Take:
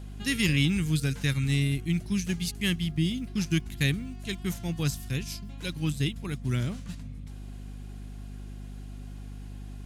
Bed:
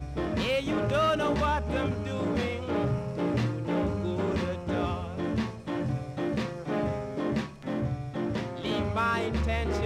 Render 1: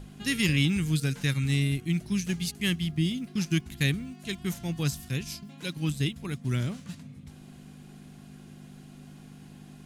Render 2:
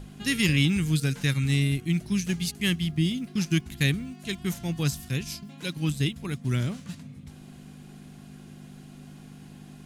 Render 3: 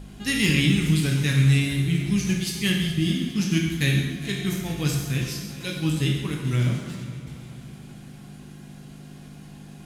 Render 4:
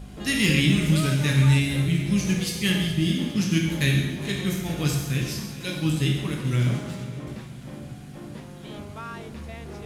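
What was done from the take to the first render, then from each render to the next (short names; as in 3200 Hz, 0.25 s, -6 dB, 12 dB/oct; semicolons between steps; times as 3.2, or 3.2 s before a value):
notches 50/100 Hz
gain +2 dB
multi-head echo 0.138 s, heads first and third, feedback 63%, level -17 dB; plate-style reverb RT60 1.1 s, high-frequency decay 0.85×, DRR -0.5 dB
add bed -10.5 dB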